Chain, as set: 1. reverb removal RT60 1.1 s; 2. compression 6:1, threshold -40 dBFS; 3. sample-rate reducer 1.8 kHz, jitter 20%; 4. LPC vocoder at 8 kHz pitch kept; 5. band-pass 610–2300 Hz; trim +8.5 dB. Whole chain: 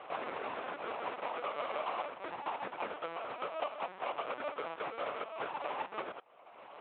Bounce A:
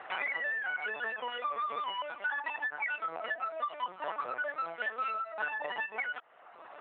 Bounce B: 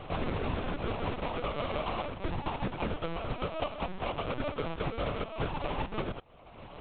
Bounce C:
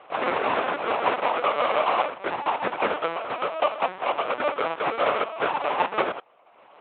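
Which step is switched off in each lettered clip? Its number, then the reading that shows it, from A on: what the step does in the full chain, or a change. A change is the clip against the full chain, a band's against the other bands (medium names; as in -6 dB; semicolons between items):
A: 3, crest factor change -1.5 dB; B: 5, 125 Hz band +22.0 dB; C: 2, mean gain reduction 12.5 dB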